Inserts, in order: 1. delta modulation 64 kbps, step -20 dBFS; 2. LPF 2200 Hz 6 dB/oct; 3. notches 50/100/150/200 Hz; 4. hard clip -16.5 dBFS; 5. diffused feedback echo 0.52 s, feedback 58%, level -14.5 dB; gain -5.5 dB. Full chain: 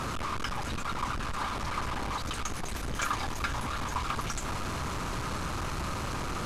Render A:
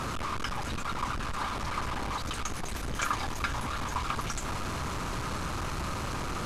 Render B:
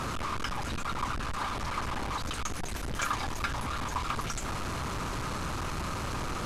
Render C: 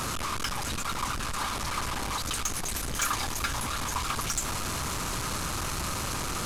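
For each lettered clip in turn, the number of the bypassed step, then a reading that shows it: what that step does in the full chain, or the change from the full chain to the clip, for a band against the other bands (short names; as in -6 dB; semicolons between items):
4, distortion -26 dB; 5, echo-to-direct -12.5 dB to none; 2, 8 kHz band +9.5 dB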